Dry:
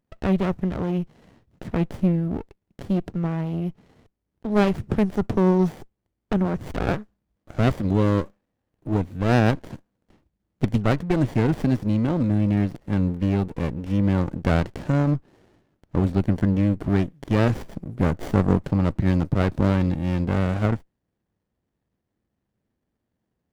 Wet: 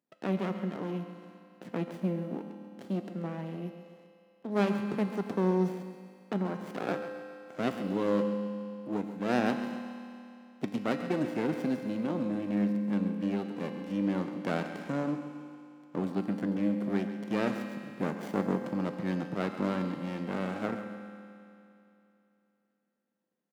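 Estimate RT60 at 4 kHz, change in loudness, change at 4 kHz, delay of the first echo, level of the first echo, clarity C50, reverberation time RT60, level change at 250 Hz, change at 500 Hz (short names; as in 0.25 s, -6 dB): 2.8 s, -9.5 dB, -7.0 dB, 0.136 s, -12.0 dB, 5.5 dB, 2.9 s, -8.0 dB, -6.5 dB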